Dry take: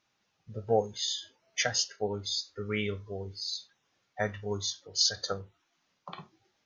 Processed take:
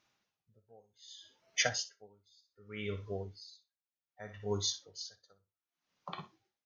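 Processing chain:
on a send: feedback echo with a high-pass in the loop 61 ms, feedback 18%, high-pass 640 Hz, level −12 dB
on the sum: tremolo with a sine in dB 0.65 Hz, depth 34 dB

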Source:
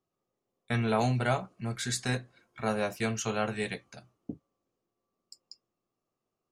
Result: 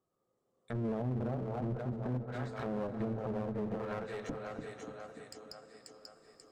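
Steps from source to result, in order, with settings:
camcorder AGC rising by 6.1 dB per second
echo with a time of its own for lows and highs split 360 Hz, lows 291 ms, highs 537 ms, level −8 dB
treble cut that deepens with the level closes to 390 Hz, closed at −27 dBFS
thirty-one-band graphic EQ 500 Hz +6 dB, 1,250 Hz +4 dB, 2,500 Hz −8 dB, 8,000 Hz +9 dB
brickwall limiter −25 dBFS, peak gain reduction 10 dB
high-shelf EQ 3,800 Hz −9.5 dB
on a send at −12 dB: convolution reverb RT60 3.8 s, pre-delay 183 ms
on the sum: asymmetric clip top −39.5 dBFS, bottom −26 dBFS

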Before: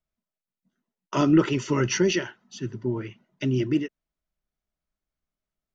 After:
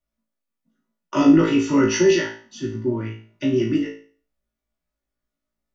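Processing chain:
flutter between parallel walls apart 3.1 metres, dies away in 0.42 s
on a send at −2 dB: convolution reverb, pre-delay 3 ms
on the sum: level −1.5 dB

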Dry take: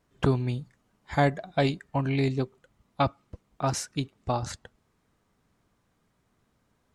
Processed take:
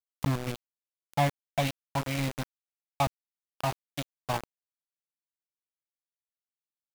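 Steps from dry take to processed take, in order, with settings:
low-shelf EQ 65 Hz −2 dB
phaser with its sweep stopped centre 1,500 Hz, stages 6
centre clipping without the shift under −27.5 dBFS

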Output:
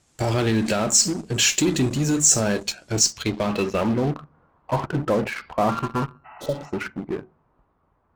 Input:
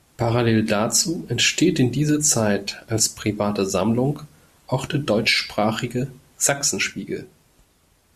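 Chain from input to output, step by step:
0:05.69–0:06.46: samples sorted by size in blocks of 32 samples
low-pass filter sweep 7,500 Hz → 1,100 Hz, 0:02.88–0:04.28
in parallel at −7 dB: fuzz pedal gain 27 dB, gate −30 dBFS
0:06.28–0:06.67: on the sum: healed spectral selection 640–3,000 Hz after
level −6.5 dB

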